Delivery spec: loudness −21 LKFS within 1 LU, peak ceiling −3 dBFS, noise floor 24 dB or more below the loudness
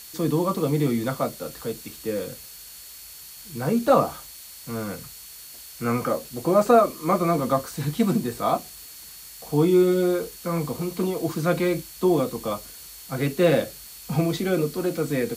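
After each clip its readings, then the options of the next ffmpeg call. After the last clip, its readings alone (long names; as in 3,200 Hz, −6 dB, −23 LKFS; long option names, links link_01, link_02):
interfering tone 4,400 Hz; level of the tone −50 dBFS; background noise floor −43 dBFS; target noise floor −48 dBFS; integrated loudness −24.0 LKFS; sample peak −5.0 dBFS; target loudness −21.0 LKFS
→ -af "bandreject=frequency=4400:width=30"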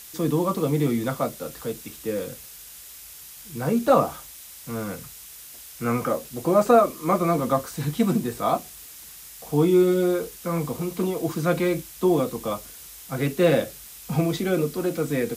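interfering tone none found; background noise floor −43 dBFS; target noise floor −48 dBFS
→ -af "afftdn=noise_reduction=6:noise_floor=-43"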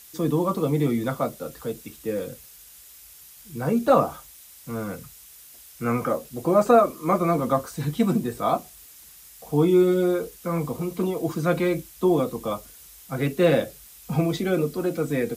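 background noise floor −48 dBFS; integrated loudness −24.0 LKFS; sample peak −4.5 dBFS; target loudness −21.0 LKFS
→ -af "volume=3dB,alimiter=limit=-3dB:level=0:latency=1"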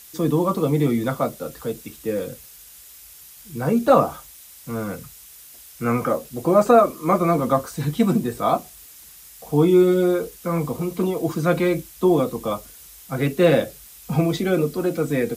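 integrated loudness −21.0 LKFS; sample peak −3.0 dBFS; background noise floor −45 dBFS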